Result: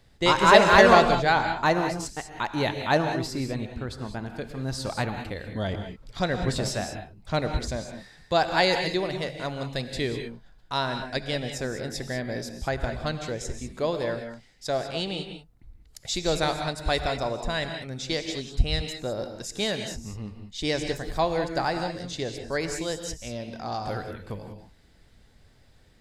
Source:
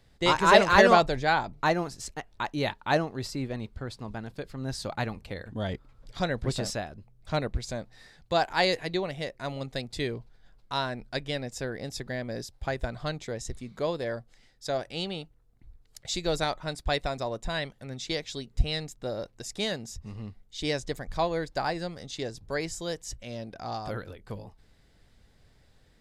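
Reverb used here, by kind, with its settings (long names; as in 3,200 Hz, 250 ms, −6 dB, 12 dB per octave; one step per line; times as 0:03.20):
reverb whose tail is shaped and stops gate 220 ms rising, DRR 6 dB
level +2.5 dB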